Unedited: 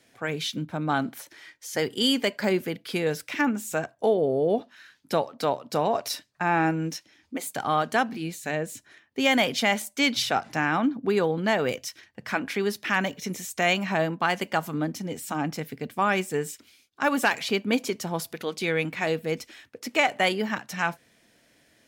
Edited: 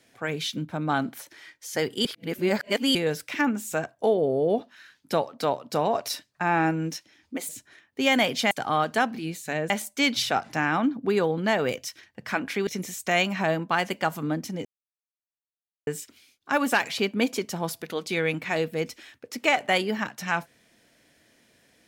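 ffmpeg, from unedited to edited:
-filter_complex "[0:a]asplit=9[a][b][c][d][e][f][g][h][i];[a]atrim=end=2.052[j];[b]atrim=start=2.048:end=2.952,asetpts=PTS-STARTPTS,areverse[k];[c]atrim=start=2.948:end=7.492[l];[d]atrim=start=8.678:end=9.702[m];[e]atrim=start=7.488:end=8.682[n];[f]atrim=start=9.698:end=12.672[o];[g]atrim=start=13.178:end=15.16,asetpts=PTS-STARTPTS,afade=t=out:st=1.978:d=0.004:c=hsin[p];[h]atrim=start=15.16:end=16.38,asetpts=PTS-STARTPTS,volume=0[q];[i]atrim=start=16.38,asetpts=PTS-STARTPTS,afade=t=in:d=0.004:c=hsin[r];[j][k]acrossfade=d=0.004:c1=hsin:c2=hsin[s];[s][l]acrossfade=d=0.004:c1=hsin:c2=hsin[t];[t][m]acrossfade=d=0.004:c1=hsin:c2=hsin[u];[u][n]acrossfade=d=0.004:c1=hsin:c2=hsin[v];[v][o]acrossfade=d=0.004:c1=hsin:c2=hsin[w];[p][q][r]concat=n=3:v=0:a=1[x];[w][x]acrossfade=d=0.004:c1=hsin:c2=hsin"

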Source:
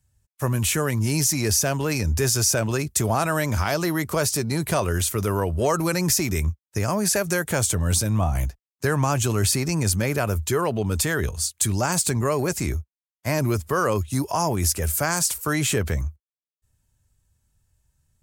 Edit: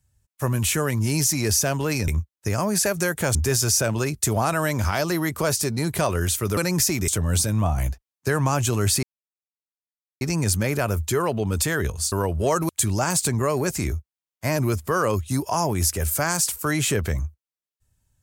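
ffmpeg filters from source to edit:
-filter_complex "[0:a]asplit=8[a][b][c][d][e][f][g][h];[a]atrim=end=2.082[i];[b]atrim=start=6.378:end=7.652[j];[c]atrim=start=2.078:end=5.302[k];[d]atrim=start=5.868:end=6.382[l];[e]atrim=start=7.648:end=9.6,asetpts=PTS-STARTPTS,afade=t=out:st=1.948:d=0.004:c=hsin,apad=pad_dur=1.18[m];[f]atrim=start=9.6:end=11.512,asetpts=PTS-STARTPTS,afade=t=in:d=0.004:c=hsin[n];[g]atrim=start=5.298:end=5.872[o];[h]atrim=start=11.508[p];[i][j]acrossfade=d=0.004:c1=hsin:c2=hsin[q];[q][k]acrossfade=d=0.004:c1=hsin:c2=hsin[r];[r][l]acrossfade=d=0.004:c1=hsin:c2=hsin[s];[m][n]concat=n=2:v=0:a=1[t];[s][t]acrossfade=d=0.004:c1=hsin:c2=hsin[u];[u][o]acrossfade=d=0.004:c1=hsin:c2=hsin[v];[v][p]acrossfade=d=0.004:c1=hsin:c2=hsin"

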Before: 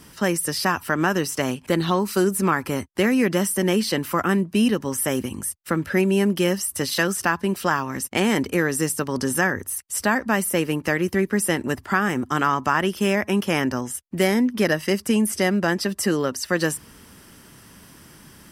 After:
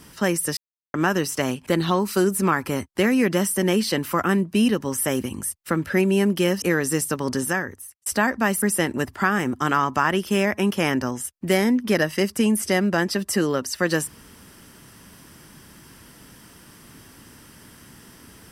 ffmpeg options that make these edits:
-filter_complex "[0:a]asplit=6[a][b][c][d][e][f];[a]atrim=end=0.57,asetpts=PTS-STARTPTS,afade=t=out:st=0.566:d=0.004:c=hsin[g];[b]atrim=start=0.57:end=0.94,asetpts=PTS-STARTPTS,volume=0[h];[c]atrim=start=0.94:end=6.622,asetpts=PTS-STARTPTS,afade=t=in:d=0.004:c=hsin[i];[d]atrim=start=8.498:end=9.94,asetpts=PTS-STARTPTS,afade=t=out:st=0.682:d=0.76[j];[e]atrim=start=9.94:end=10.502,asetpts=PTS-STARTPTS,afade=t=in:d=0.004:c=hsin[k];[f]atrim=start=11.318[l];[g][h][i]concat=n=3:v=0:a=1[m];[j][k]concat=n=2:v=0:a=1[n];[m][n]acrossfade=d=0.004:c1=hsin:c2=hsin[o];[o][l]acrossfade=d=0.004:c1=hsin:c2=hsin"

